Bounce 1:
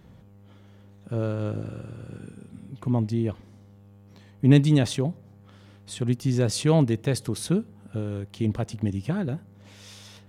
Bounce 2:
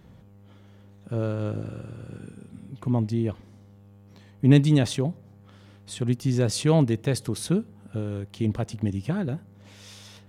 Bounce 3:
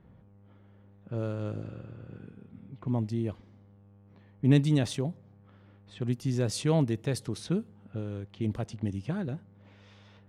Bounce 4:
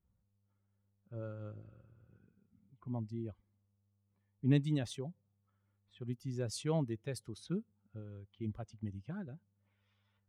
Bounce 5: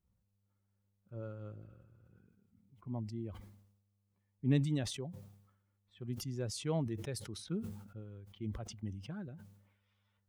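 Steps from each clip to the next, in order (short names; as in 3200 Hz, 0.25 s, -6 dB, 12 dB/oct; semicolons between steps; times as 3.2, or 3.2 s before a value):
nothing audible
low-pass opened by the level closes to 1900 Hz, open at -21 dBFS; gain -5.5 dB
per-bin expansion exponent 1.5; gain -6.5 dB
sustainer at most 65 dB/s; gain -1 dB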